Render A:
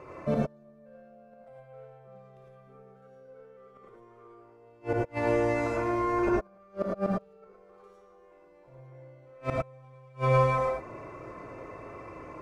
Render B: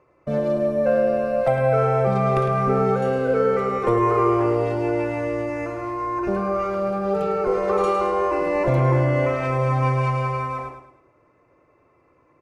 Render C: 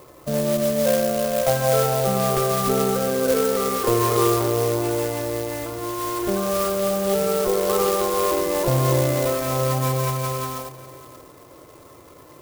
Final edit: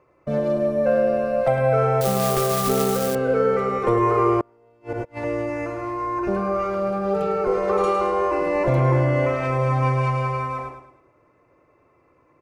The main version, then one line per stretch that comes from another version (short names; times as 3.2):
B
2.01–3.15 from C
4.41–5.24 from A